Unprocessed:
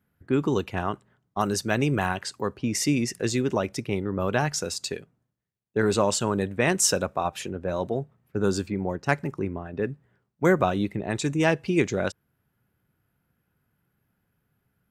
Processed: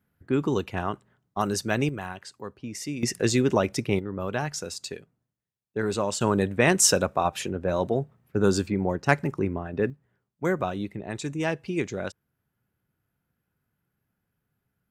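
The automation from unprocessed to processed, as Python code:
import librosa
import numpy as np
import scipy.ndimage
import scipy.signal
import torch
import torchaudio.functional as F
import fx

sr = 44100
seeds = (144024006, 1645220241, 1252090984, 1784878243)

y = fx.gain(x, sr, db=fx.steps((0.0, -1.0), (1.89, -9.5), (3.03, 3.0), (3.99, -4.5), (6.21, 2.5), (9.9, -5.5)))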